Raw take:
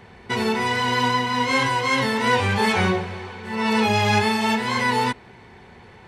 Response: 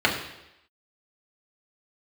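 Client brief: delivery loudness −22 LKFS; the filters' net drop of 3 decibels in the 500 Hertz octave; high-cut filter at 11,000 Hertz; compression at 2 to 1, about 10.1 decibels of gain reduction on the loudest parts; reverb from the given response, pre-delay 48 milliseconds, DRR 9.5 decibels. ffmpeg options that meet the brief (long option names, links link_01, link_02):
-filter_complex "[0:a]lowpass=11000,equalizer=frequency=500:width_type=o:gain=-3.5,acompressor=threshold=-35dB:ratio=2,asplit=2[link_01][link_02];[1:a]atrim=start_sample=2205,adelay=48[link_03];[link_02][link_03]afir=irnorm=-1:irlink=0,volume=-27dB[link_04];[link_01][link_04]amix=inputs=2:normalize=0,volume=8dB"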